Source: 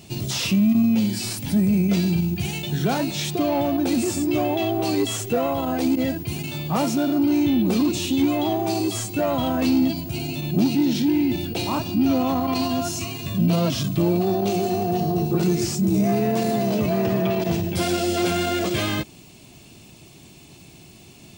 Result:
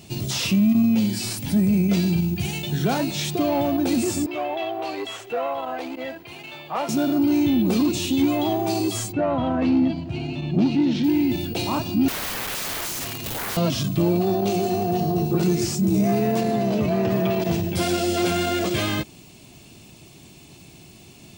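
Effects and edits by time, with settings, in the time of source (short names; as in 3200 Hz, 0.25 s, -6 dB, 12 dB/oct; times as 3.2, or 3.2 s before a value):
4.26–6.89 three-band isolator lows -21 dB, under 450 Hz, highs -17 dB, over 3500 Hz
9.11–11.03 LPF 1900 Hz -> 3800 Hz
12.08–13.57 wrapped overs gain 24 dB
16.4–17.1 high shelf 5400 Hz -> 8500 Hz -10.5 dB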